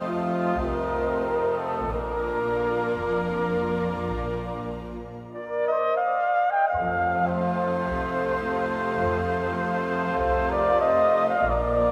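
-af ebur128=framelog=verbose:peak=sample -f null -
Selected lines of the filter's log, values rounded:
Integrated loudness:
  I:         -25.0 LUFS
  Threshold: -35.1 LUFS
Loudness range:
  LRA:         3.8 LU
  Threshold: -45.6 LUFS
  LRA low:   -27.3 LUFS
  LRA high:  -23.6 LUFS
Sample peak:
  Peak:       -9.5 dBFS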